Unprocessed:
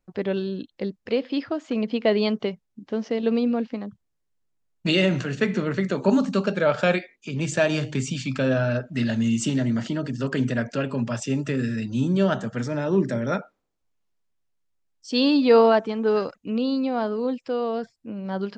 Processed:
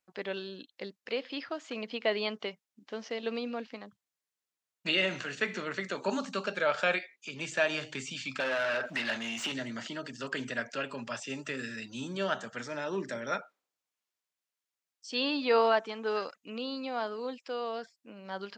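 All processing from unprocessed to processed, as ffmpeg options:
-filter_complex "[0:a]asettb=1/sr,asplit=3[a][b][c];[a]atrim=end=8.404[d];[b]atrim=start=8.4:end=9.52,asetpts=PTS-STARTPTS,afade=t=in:d=0.004:c=qsin,afade=t=out:st=1.116:d=0.004:c=qsin,acompressor=threshold=-30dB:ratio=12:attack=3.2:release=140:knee=1:detection=peak,asplit=2[e][f];[f]highpass=f=720:p=1,volume=28dB,asoftclip=type=tanh:threshold=-15dB[g];[e][g]amix=inputs=2:normalize=0,lowpass=f=3.4k:p=1,volume=-6dB[h];[c]atrim=start=9.516[i];[d][h]acrossfade=d=0.004:c1=hsin:c2=qsin[j];[j][i]acrossfade=d=0.004:c1=qsin:c2=hsin,acrossover=split=3400[k][l];[l]acompressor=threshold=-43dB:ratio=4:attack=1:release=60[m];[k][m]amix=inputs=2:normalize=0,highpass=f=1.5k:p=1"

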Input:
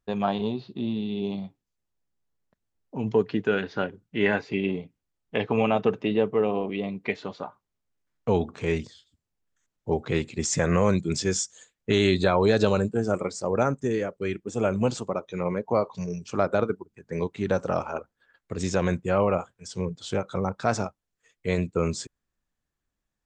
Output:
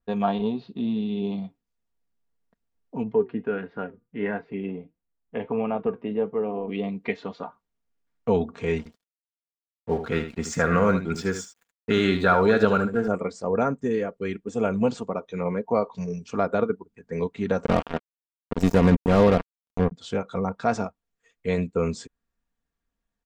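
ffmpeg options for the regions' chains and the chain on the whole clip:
-filter_complex "[0:a]asettb=1/sr,asplit=3[a][b][c];[a]atrim=end=3.034[d];[b]atrim=start=3.03:end=6.68,asetpts=PTS-STARTPTS,afade=t=in:d=0.004:c=qsin,afade=t=out:st=3.646:d=0.004:c=qsin,lowpass=1.9k,flanger=delay=5.6:depth=2.8:regen=78:speed=1.5:shape=sinusoidal[e];[c]atrim=start=6.676[f];[d][e]acrossfade=d=0.004:c1=hsin:c2=qsin[g];[g][f]acrossfade=d=0.004:c1=qsin:c2=hsin,asettb=1/sr,asplit=3[h][i][j];[h]atrim=end=8.784[k];[i]atrim=start=8.78:end=13.08,asetpts=PTS-STARTPTS,afade=t=in:d=0.004:c=qsin,afade=t=out:st=4.296:d=0.004:c=qsin,equalizer=f=1.4k:t=o:w=0.36:g=13.5,aeval=exprs='sgn(val(0))*max(abs(val(0))-0.00668,0)':c=same,aecho=1:1:76:0.316,atrim=end_sample=189630[l];[j]atrim=start=13.076[m];[k][l]acrossfade=d=0.004:c1=hsin:c2=qsin[n];[n][m]acrossfade=d=0.004:c1=qsin:c2=hsin,asettb=1/sr,asplit=3[o][p][q];[o]atrim=end=17.644[r];[p]atrim=start=17.64:end=19.92,asetpts=PTS-STARTPTS,afade=t=in:d=0.004:c=qsin,afade=t=out:st=2.276:d=0.004:c=qsin,acrusher=bits=3:mix=0:aa=0.5,lowshelf=f=390:g=10[s];[q]atrim=start=19.916[t];[r][s]acrossfade=d=0.004:c1=hsin:c2=qsin[u];[u][t]acrossfade=d=0.004:c1=qsin:c2=hsin,highshelf=f=4.4k:g=-7.5,aecho=1:1:4.3:0.46,adynamicequalizer=threshold=0.00398:dfrequency=6600:dqfactor=0.72:tfrequency=6600:tqfactor=0.72:attack=5:release=100:ratio=0.375:range=3:mode=cutabove:tftype=bell"

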